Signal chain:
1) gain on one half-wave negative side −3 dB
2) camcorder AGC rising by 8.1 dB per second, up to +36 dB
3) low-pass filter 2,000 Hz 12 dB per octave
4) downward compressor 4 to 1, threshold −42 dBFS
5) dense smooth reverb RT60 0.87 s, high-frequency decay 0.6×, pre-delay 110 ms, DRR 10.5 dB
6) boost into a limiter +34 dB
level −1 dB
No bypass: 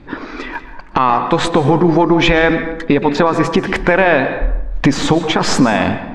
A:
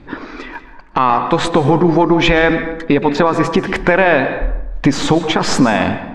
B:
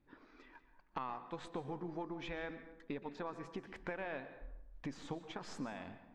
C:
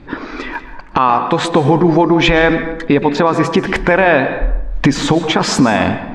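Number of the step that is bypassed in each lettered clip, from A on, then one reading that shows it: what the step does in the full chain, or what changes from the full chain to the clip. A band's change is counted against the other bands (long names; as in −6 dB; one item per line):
2, change in momentary loudness spread +2 LU
6, change in crest factor +9.0 dB
1, distortion level −15 dB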